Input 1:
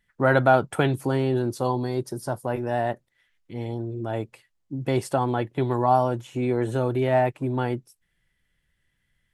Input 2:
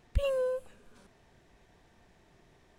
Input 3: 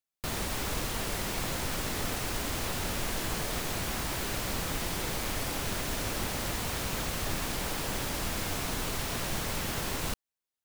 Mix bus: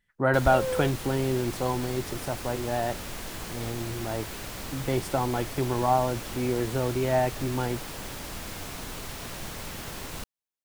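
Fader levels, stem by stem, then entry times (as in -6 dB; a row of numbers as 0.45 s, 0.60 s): -3.5 dB, 0.0 dB, -4.5 dB; 0.00 s, 0.30 s, 0.10 s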